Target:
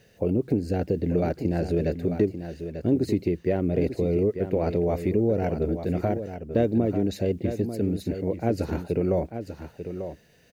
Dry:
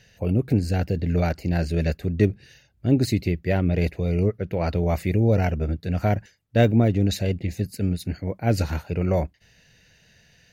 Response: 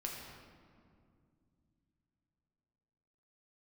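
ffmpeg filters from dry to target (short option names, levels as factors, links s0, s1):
-filter_complex "[0:a]equalizer=f=380:t=o:w=2.1:g=14.5,acompressor=threshold=0.2:ratio=3,acrusher=bits=9:mix=0:aa=0.000001,asplit=2[s0][s1];[s1]aecho=0:1:892:0.335[s2];[s0][s2]amix=inputs=2:normalize=0,volume=0.447"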